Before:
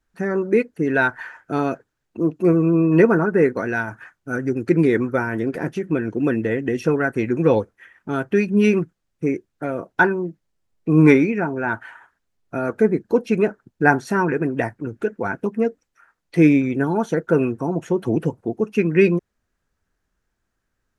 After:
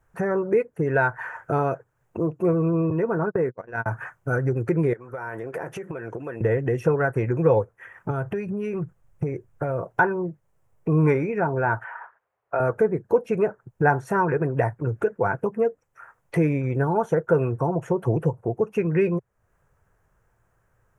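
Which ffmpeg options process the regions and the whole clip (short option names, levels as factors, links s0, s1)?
-filter_complex "[0:a]asettb=1/sr,asplit=3[s0][s1][s2];[s0]atrim=end=2.904[s3];[s1]atrim=start=2.9:end=3.86,asetpts=PTS-STARTPTS,afade=t=in:d=0.004:c=qsin,afade=t=out:st=0.956:d=0.004:c=qsin,agate=range=0.00891:threshold=0.0891:ratio=16:release=100:detection=peak,equalizer=f=250:w=1.3:g=5,acompressor=threshold=0.112:ratio=4:attack=3.2:release=140:knee=1:detection=peak[s4];[s2]atrim=start=3.856[s5];[s3][s4]acrossfade=d=0.004:c1=hsin:c2=qsin[s6];[s6][s5]acrossfade=d=0.004:c1=qsin:c2=hsin,asettb=1/sr,asplit=3[s7][s8][s9];[s7]atrim=end=4.934[s10];[s8]atrim=start=4.93:end=6.41,asetpts=PTS-STARTPTS,afade=t=in:d=0.004:c=qsin,afade=t=out:st=1.476:d=0.004:c=qsin,highpass=f=530:p=1,acompressor=threshold=0.0178:ratio=16:attack=3.2:release=140:knee=1:detection=peak[s11];[s9]atrim=start=6.406[s12];[s10][s11]acrossfade=d=0.004:c1=hsin:c2=qsin[s13];[s13][s12]acrossfade=d=0.004:c1=qsin:c2=hsin,asettb=1/sr,asplit=3[s14][s15][s16];[s14]atrim=end=8.104[s17];[s15]atrim=start=8.1:end=9.89,asetpts=PTS-STARTPTS,afade=t=in:d=0.004:c=qsin,afade=t=out:st=1.786:d=0.004:c=qsin,lowshelf=f=94:g=12,acompressor=threshold=0.0398:ratio=3:attack=3.2:release=140:knee=1:detection=peak[s18];[s16]atrim=start=9.886[s19];[s17][s18]acrossfade=d=0.004:c1=hsin:c2=qsin[s20];[s20][s19]acrossfade=d=0.004:c1=qsin:c2=hsin,asettb=1/sr,asplit=3[s21][s22][s23];[s21]atrim=end=11.844[s24];[s22]atrim=start=11.84:end=12.6,asetpts=PTS-STARTPTS,afade=t=in:d=0.004:c=qsin,afade=t=out:st=0.756:d=0.004:c=qsin,highpass=41,acrossover=split=420 2900:gain=0.1 1 0.112[s25][s26][s27];[s25][s26][s27]amix=inputs=3:normalize=0[s28];[s23]atrim=start=12.596[s29];[s24][s28]acrossfade=d=0.004:c1=hsin:c2=qsin[s30];[s30][s29]acrossfade=d=0.004:c1=qsin:c2=hsin,equalizer=f=4400:w=1.6:g=-6.5,acompressor=threshold=0.0126:ratio=2,equalizer=f=125:t=o:w=1:g=12,equalizer=f=250:t=o:w=1:g=-10,equalizer=f=500:t=o:w=1:g=7,equalizer=f=1000:t=o:w=1:g=6,equalizer=f=4000:t=o:w=1:g=-8,volume=2.11"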